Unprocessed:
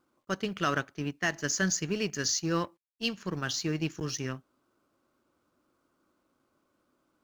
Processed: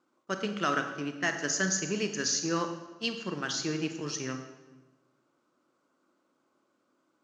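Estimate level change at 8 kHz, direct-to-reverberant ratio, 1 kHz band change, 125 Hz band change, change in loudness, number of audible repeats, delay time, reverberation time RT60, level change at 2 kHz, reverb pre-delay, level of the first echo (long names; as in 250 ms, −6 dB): +0.5 dB, 6.0 dB, +1.0 dB, −4.0 dB, 0.0 dB, no echo audible, no echo audible, 1.2 s, +0.5 dB, 26 ms, no echo audible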